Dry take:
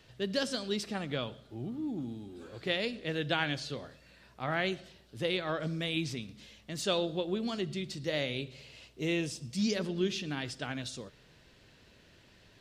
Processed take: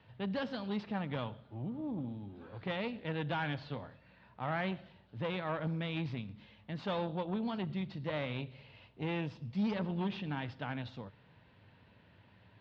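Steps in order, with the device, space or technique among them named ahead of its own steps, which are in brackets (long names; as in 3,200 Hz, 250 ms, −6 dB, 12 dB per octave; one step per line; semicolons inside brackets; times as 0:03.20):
guitar amplifier (tube saturation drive 30 dB, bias 0.6; bass and treble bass +2 dB, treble −14 dB; loudspeaker in its box 81–4,300 Hz, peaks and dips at 100 Hz +9 dB, 190 Hz +3 dB, 370 Hz −6 dB, 910 Hz +8 dB)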